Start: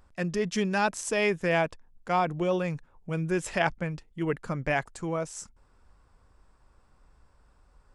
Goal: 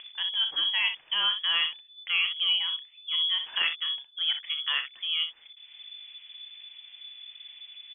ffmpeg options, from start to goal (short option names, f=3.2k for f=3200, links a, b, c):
-af "highshelf=f=2.3k:g=-9.5,acompressor=mode=upward:threshold=-34dB:ratio=2.5,aecho=1:1:31|62:0.266|0.335,lowpass=f=3k:t=q:w=0.5098,lowpass=f=3k:t=q:w=0.6013,lowpass=f=3k:t=q:w=0.9,lowpass=f=3k:t=q:w=2.563,afreqshift=-3500" -ar 24000 -c:a libmp3lame -b:a 56k